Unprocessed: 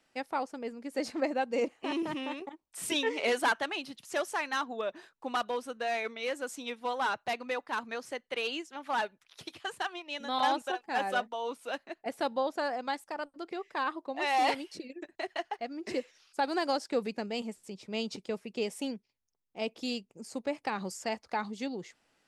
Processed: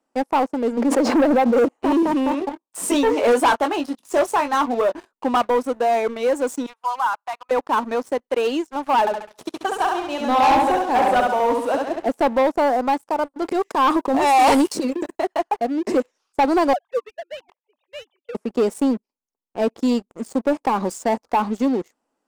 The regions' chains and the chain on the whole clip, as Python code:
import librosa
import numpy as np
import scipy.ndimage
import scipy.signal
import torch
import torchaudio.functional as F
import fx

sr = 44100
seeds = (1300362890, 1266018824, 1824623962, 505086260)

y = fx.chain(x, sr, fx.bandpass_edges(low_hz=250.0, high_hz=3300.0),
    fx.pre_swell(db_per_s=37.0), at=(0.77, 1.57))
y = fx.chain(y, sr, fx.highpass(hz=180.0, slope=12),
    fx.doubler(ms=21.0, db=-8.5), at=(2.31, 5.12))
y = fx.chain(y, sr, fx.highpass(hz=950.0, slope=24),
    fx.high_shelf(hz=2100.0, db=-10.5), at=(6.66, 7.51))
y = fx.chain(y, sr, fx.highpass(hz=54.0, slope=12),
    fx.echo_feedback(ms=68, feedback_pct=47, wet_db=-4), at=(9.0, 12.08))
y = fx.chain(y, sr, fx.high_shelf(hz=4300.0, db=10.5),
    fx.leveller(passes=1),
    fx.transient(attack_db=-7, sustain_db=7), at=(13.42, 15.17))
y = fx.chain(y, sr, fx.sine_speech(),
    fx.highpass(hz=730.0, slope=24),
    fx.peak_eq(hz=1400.0, db=-12.5, octaves=0.21), at=(16.73, 18.35))
y = fx.graphic_eq_10(y, sr, hz=(125, 250, 500, 1000, 2000, 4000, 8000), db=(-9, 12, 6, 10, -5, -5, 5))
y = fx.leveller(y, sr, passes=3)
y = y * librosa.db_to_amplitude(-4.0)